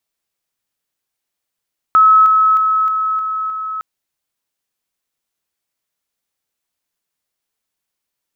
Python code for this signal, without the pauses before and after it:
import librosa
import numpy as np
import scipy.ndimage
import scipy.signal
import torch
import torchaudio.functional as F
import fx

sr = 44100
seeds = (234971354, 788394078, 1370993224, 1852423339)

y = fx.level_ladder(sr, hz=1290.0, from_db=-5.5, step_db=-3.0, steps=6, dwell_s=0.31, gap_s=0.0)